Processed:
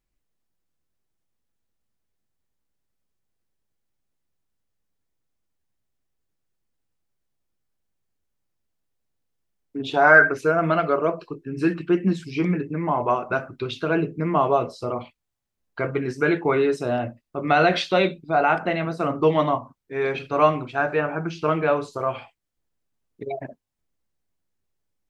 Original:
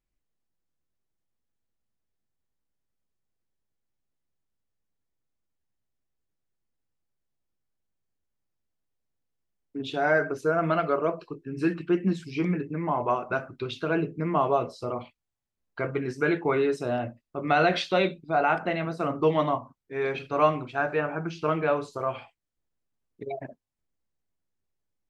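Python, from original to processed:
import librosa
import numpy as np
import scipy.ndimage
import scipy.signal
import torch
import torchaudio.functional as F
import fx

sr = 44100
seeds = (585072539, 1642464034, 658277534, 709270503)

y = fx.peak_eq(x, sr, hz=fx.line((9.84, 700.0), (10.51, 2800.0)), db=13.0, octaves=0.82, at=(9.84, 10.51), fade=0.02)
y = F.gain(torch.from_numpy(y), 4.0).numpy()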